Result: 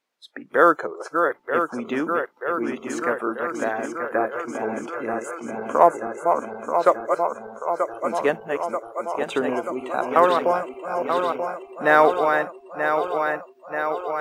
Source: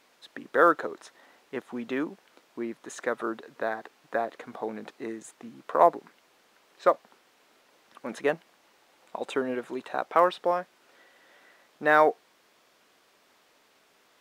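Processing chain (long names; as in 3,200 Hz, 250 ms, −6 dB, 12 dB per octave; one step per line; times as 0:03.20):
feedback delay that plays each chunk backwards 467 ms, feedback 83%, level −5.5 dB
noise reduction from a noise print of the clip's start 22 dB
level +4.5 dB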